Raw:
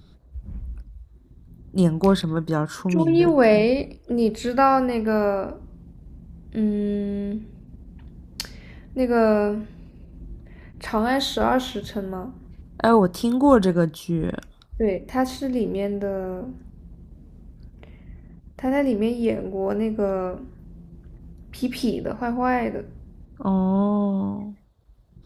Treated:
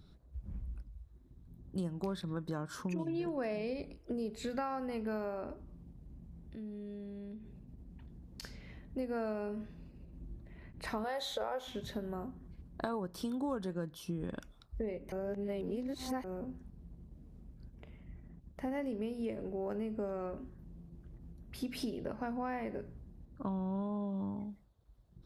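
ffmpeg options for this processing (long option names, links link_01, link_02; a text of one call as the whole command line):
ffmpeg -i in.wav -filter_complex "[0:a]asplit=3[link_01][link_02][link_03];[link_01]afade=type=out:start_time=5.53:duration=0.02[link_04];[link_02]acompressor=threshold=-38dB:ratio=3:attack=3.2:release=140:knee=1:detection=peak,afade=type=in:start_time=5.53:duration=0.02,afade=type=out:start_time=8.42:duration=0.02[link_05];[link_03]afade=type=in:start_time=8.42:duration=0.02[link_06];[link_04][link_05][link_06]amix=inputs=3:normalize=0,asettb=1/sr,asplit=3[link_07][link_08][link_09];[link_07]atrim=end=11.044[link_10];[link_08]atrim=start=11.04:end=11.68,asetpts=PTS-STARTPTS,afade=type=in:duration=0.004:curve=qsin,afade=type=out:start_time=0.636:duration=0.004:curve=qsin,lowshelf=frequency=380:width_type=q:width=3:gain=-8[link_11];[link_09]atrim=start=11.676[link_12];[link_10][link_11]acrossfade=duration=0.004:curve1=hsin:curve2=qsin[link_13];[link_13][link_12]acrossfade=duration=0.004:curve1=qsin:curve2=hsin,asplit=3[link_14][link_15][link_16];[link_14]atrim=end=15.122[link_17];[link_15]atrim=start=15.118:end=16.242,asetpts=PTS-STARTPTS,areverse[link_18];[link_16]atrim=start=16.238[link_19];[link_17][link_18]acrossfade=duration=0.004:curve1=hsin:curve2=hsin[link_20];[link_20][link_19]acrossfade=duration=0.004:curve1=hsin:curve2=hsin,acompressor=threshold=-26dB:ratio=6,volume=-8.5dB" out.wav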